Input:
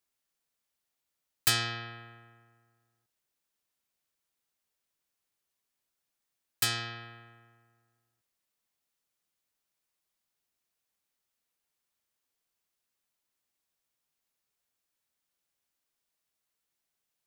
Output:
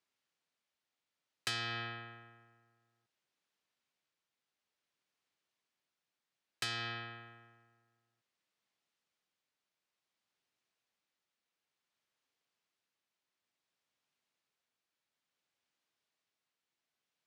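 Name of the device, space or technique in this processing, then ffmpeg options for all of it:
AM radio: -af "highpass=110,lowpass=3.3k,highshelf=f=4.9k:g=11.5,acompressor=threshold=-34dB:ratio=6,asoftclip=type=tanh:threshold=-25dB,tremolo=f=0.57:d=0.26,volume=1dB"

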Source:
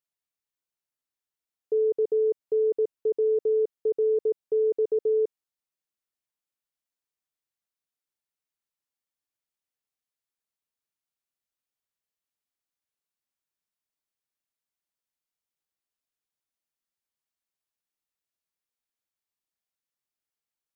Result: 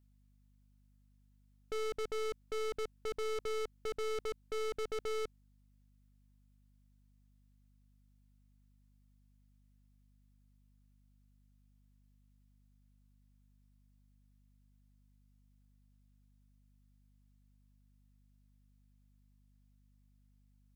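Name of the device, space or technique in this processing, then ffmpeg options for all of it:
valve amplifier with mains hum: -af "aeval=exprs='(tanh(141*val(0)+0.7)-tanh(0.7))/141':c=same,aeval=exprs='val(0)+0.000224*(sin(2*PI*50*n/s)+sin(2*PI*2*50*n/s)/2+sin(2*PI*3*50*n/s)/3+sin(2*PI*4*50*n/s)/4+sin(2*PI*5*50*n/s)/5)':c=same,volume=6.5dB"

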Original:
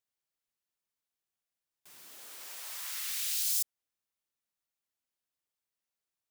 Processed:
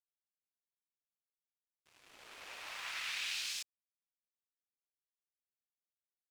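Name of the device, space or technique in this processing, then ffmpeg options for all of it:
pocket radio on a weak battery: -af "highpass=260,lowpass=3.1k,aeval=exprs='sgn(val(0))*max(abs(val(0))-0.00106,0)':c=same,equalizer=f=2.5k:t=o:w=0.27:g=5,volume=6.5dB"

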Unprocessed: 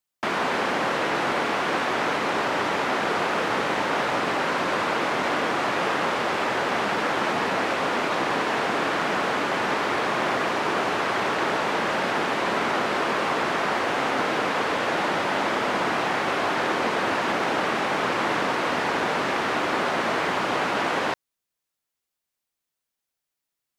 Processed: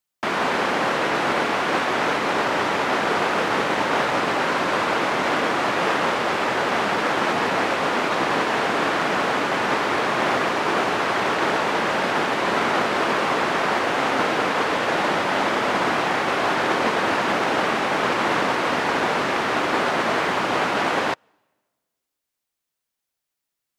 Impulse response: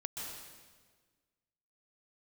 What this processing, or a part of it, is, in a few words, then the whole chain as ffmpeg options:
keyed gated reverb: -filter_complex "[0:a]asplit=3[a][b][c];[1:a]atrim=start_sample=2205[d];[b][d]afir=irnorm=-1:irlink=0[e];[c]apad=whole_len=1048893[f];[e][f]sidechaingate=range=-34dB:threshold=-22dB:ratio=16:detection=peak,volume=-2.5dB[g];[a][g]amix=inputs=2:normalize=0,volume=1.5dB"

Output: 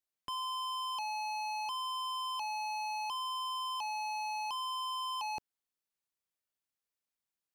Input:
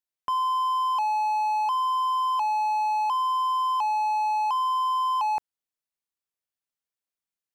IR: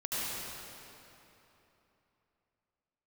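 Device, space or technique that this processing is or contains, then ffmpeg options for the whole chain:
one-band saturation: -filter_complex "[0:a]acrossover=split=450|2400[a][b][c];[b]asoftclip=type=tanh:threshold=-39dB[d];[a][d][c]amix=inputs=3:normalize=0,volume=-1.5dB"

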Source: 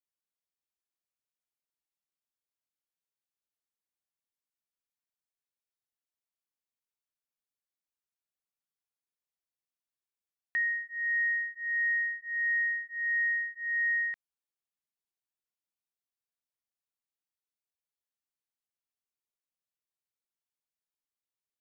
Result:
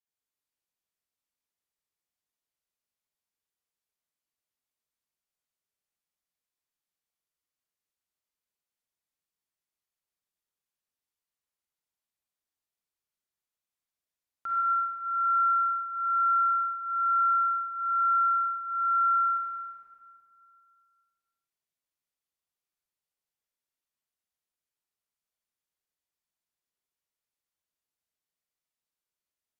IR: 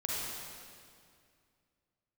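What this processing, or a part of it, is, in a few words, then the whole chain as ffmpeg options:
slowed and reverbed: -filter_complex "[0:a]asetrate=32193,aresample=44100[a];[1:a]atrim=start_sample=2205[b];[a][b]afir=irnorm=-1:irlink=0,volume=-4dB"

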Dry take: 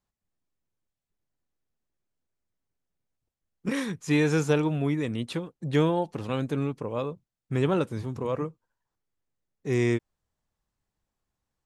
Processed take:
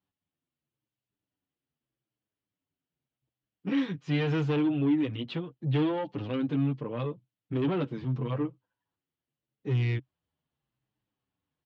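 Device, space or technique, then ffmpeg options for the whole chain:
barber-pole flanger into a guitar amplifier: -filter_complex "[0:a]asplit=2[a][b];[b]adelay=7.6,afreqshift=-0.8[c];[a][c]amix=inputs=2:normalize=1,asoftclip=type=tanh:threshold=-26.5dB,highpass=82,equalizer=f=130:t=q:w=4:g=9,equalizer=f=290:t=q:w=4:g=8,equalizer=f=3k:t=q:w=4:g=7,lowpass=f=4.2k:w=0.5412,lowpass=f=4.2k:w=1.3066"

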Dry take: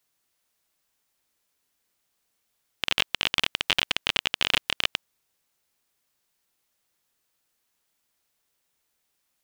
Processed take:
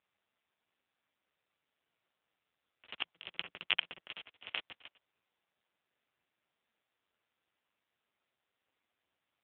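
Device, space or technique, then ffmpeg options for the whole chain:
telephone: -filter_complex "[0:a]asplit=3[a][b][c];[a]afade=t=out:st=3.04:d=0.02[d];[b]adynamicequalizer=threshold=0.00112:dfrequency=170:dqfactor=4.5:tfrequency=170:tqfactor=4.5:attack=5:release=100:ratio=0.375:range=2.5:mode=boostabove:tftype=bell,afade=t=in:st=3.04:d=0.02,afade=t=out:st=3.98:d=0.02[e];[c]afade=t=in:st=3.98:d=0.02[f];[d][e][f]amix=inputs=3:normalize=0,highpass=260,lowpass=3.3k,asoftclip=type=tanh:threshold=-11dB" -ar 8000 -c:a libopencore_amrnb -b:a 5900

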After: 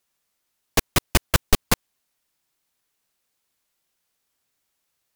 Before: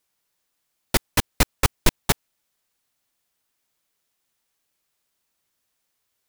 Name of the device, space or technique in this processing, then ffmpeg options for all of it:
nightcore: -af "asetrate=53802,aresample=44100,volume=1dB"

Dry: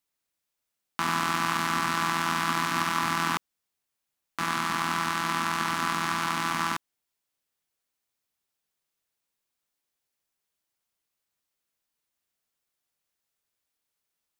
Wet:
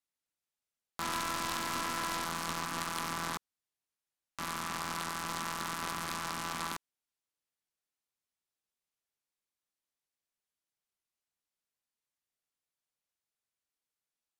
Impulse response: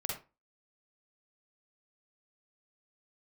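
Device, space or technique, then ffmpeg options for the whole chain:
overflowing digital effects unit: -filter_complex "[0:a]asettb=1/sr,asplit=3[a][b][c];[a]atrim=end=1.004[d];[b]atrim=start=1:end=2.25,asetpts=PTS-STARTPTS,afade=t=in:d=0.004:c=qsin,afade=t=out:st=1.246:d=0.004:c=qsin,asplit=2[e][f];[f]adelay=21,volume=-4dB[g];[e][g]amix=inputs=2:normalize=0,atrim=end_sample=55125[h];[c]atrim=start=2.246[i];[d][h]acrossfade=d=0.004:c1=hsin:c2=qsin[j];[j][i]acrossfade=d=0.004:c1=qsin:c2=hsin,aeval=exprs='(mod(6.68*val(0)+1,2)-1)/6.68':c=same,lowpass=13k,volume=-8.5dB"

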